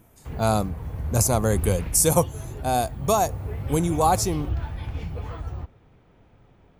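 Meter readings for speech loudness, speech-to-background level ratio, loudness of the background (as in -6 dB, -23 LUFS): -23.5 LUFS, 9.5 dB, -33.0 LUFS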